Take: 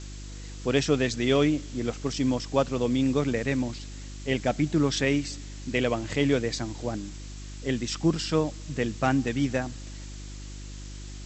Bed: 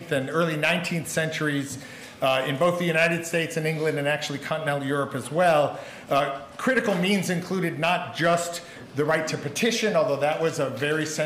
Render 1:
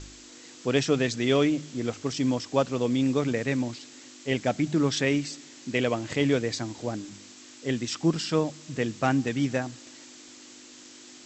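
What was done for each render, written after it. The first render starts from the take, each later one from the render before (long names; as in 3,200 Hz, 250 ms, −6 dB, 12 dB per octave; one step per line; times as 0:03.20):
hum removal 50 Hz, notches 4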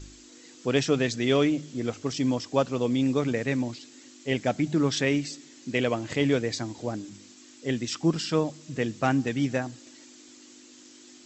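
broadband denoise 6 dB, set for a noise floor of −49 dBFS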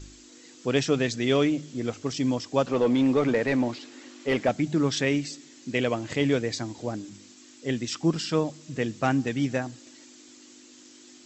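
0:02.67–0:04.49: mid-hump overdrive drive 19 dB, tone 1,100 Hz, clips at −11 dBFS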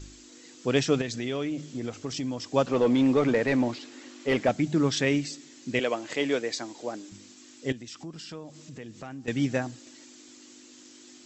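0:01.01–0:02.49: downward compressor 3 to 1, threshold −29 dBFS
0:05.79–0:07.12: high-pass filter 340 Hz
0:07.72–0:09.28: downward compressor 3 to 1, threshold −42 dBFS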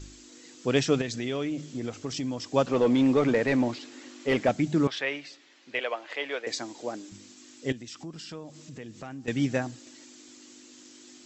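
0:04.87–0:06.47: three-way crossover with the lows and the highs turned down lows −23 dB, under 490 Hz, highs −22 dB, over 4,100 Hz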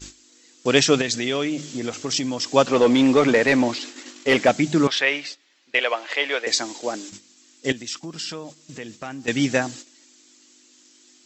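noise gate −45 dBFS, range −14 dB
drawn EQ curve 110 Hz 0 dB, 170 Hz +4 dB, 5,500 Hz +13 dB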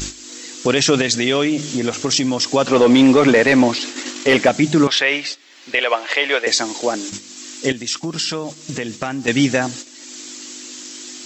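in parallel at +1 dB: upward compression, threshold −20 dBFS
on the sum: brickwall limiter −4.5 dBFS, peak gain reduction 9 dB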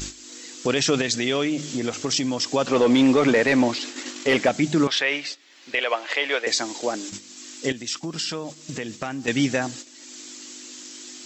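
level −6 dB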